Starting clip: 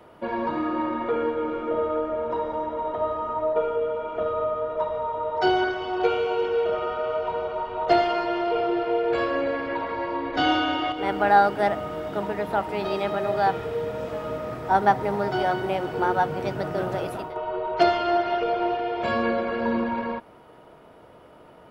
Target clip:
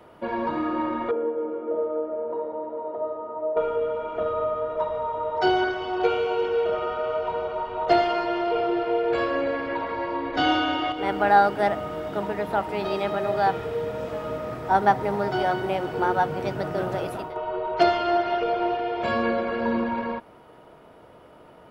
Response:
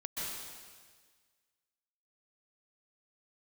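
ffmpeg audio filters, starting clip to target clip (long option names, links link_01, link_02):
-filter_complex "[0:a]asettb=1/sr,asplit=3[link_01][link_02][link_03];[link_01]atrim=end=1.114[link_04];[link_02]atrim=start=1.11:end=3.57,asetpts=PTS-STARTPTS,afade=type=in:duration=0.004:curve=qsin,afade=type=out:start_time=2.456:duration=0.004:curve=qsin,bandpass=frequency=460:width_type=q:width=1.3:csg=0[link_05];[link_03]atrim=start=3.566[link_06];[link_04][link_05]acrossfade=duration=0.004:curve1=hsin:curve2=qsin[link_07];[link_07][link_06]acrossfade=duration=0.004:curve1=qsin:curve2=hsin"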